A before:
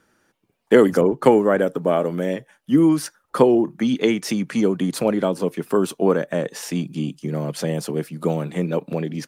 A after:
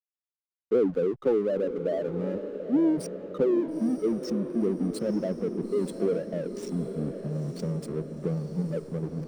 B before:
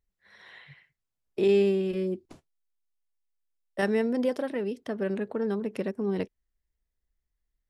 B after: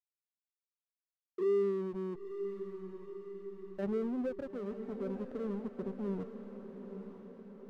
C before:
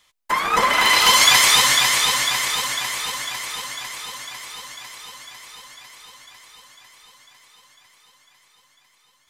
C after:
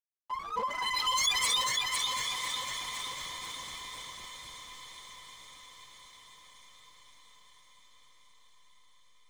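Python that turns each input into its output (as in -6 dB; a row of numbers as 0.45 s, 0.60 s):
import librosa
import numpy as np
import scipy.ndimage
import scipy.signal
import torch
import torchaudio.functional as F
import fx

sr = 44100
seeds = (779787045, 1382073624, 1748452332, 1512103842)

y = fx.spec_expand(x, sr, power=2.3)
y = 10.0 ** (-8.0 / 20.0) * np.tanh(y / 10.0 ** (-8.0 / 20.0))
y = fx.peak_eq(y, sr, hz=1800.0, db=-12.0, octaves=2.2)
y = fx.backlash(y, sr, play_db=-30.0)
y = fx.echo_diffused(y, sr, ms=922, feedback_pct=58, wet_db=-9)
y = y * 10.0 ** (-5.0 / 20.0)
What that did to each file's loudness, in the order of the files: -8.0 LU, -10.0 LU, -15.0 LU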